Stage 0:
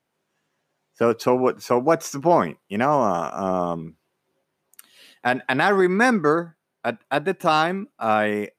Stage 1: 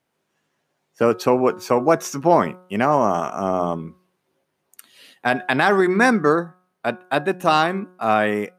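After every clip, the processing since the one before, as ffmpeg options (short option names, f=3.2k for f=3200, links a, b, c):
-af "bandreject=f=182.3:t=h:w=4,bandreject=f=364.6:t=h:w=4,bandreject=f=546.9:t=h:w=4,bandreject=f=729.2:t=h:w=4,bandreject=f=911.5:t=h:w=4,bandreject=f=1.0938k:t=h:w=4,bandreject=f=1.2761k:t=h:w=4,bandreject=f=1.4584k:t=h:w=4,bandreject=f=1.6407k:t=h:w=4,volume=2dB"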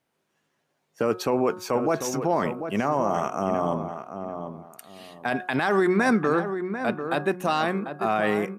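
-filter_complex "[0:a]alimiter=limit=-11dB:level=0:latency=1:release=28,asplit=2[a][b];[b]adelay=743,lowpass=f=1.7k:p=1,volume=-8dB,asplit=2[c][d];[d]adelay=743,lowpass=f=1.7k:p=1,volume=0.26,asplit=2[e][f];[f]adelay=743,lowpass=f=1.7k:p=1,volume=0.26[g];[a][c][e][g]amix=inputs=4:normalize=0,volume=-2dB"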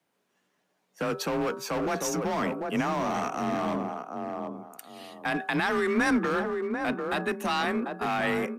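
-filter_complex "[0:a]afreqshift=32,acrossover=split=260|1300[a][b][c];[b]asoftclip=type=hard:threshold=-30dB[d];[a][d][c]amix=inputs=3:normalize=0"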